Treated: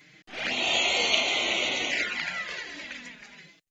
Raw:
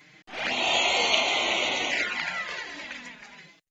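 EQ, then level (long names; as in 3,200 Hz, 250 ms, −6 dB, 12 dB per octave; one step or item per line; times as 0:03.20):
parametric band 920 Hz −7 dB 0.94 octaves
0.0 dB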